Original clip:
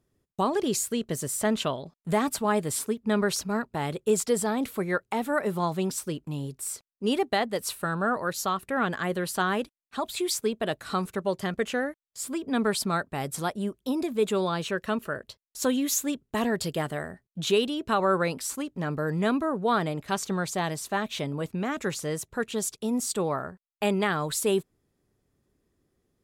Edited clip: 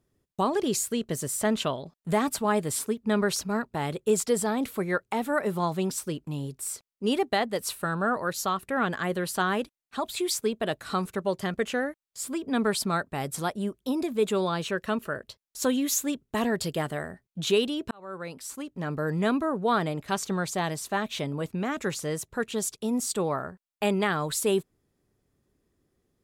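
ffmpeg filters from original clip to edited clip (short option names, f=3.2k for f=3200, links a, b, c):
-filter_complex "[0:a]asplit=2[a][b];[a]atrim=end=17.91,asetpts=PTS-STARTPTS,afade=t=out:st=17.906:d=0.004:c=hsin[c];[b]atrim=start=17.91,asetpts=PTS-STARTPTS,afade=t=in:d=1.15[d];[c][d]concat=n=2:v=0:a=1"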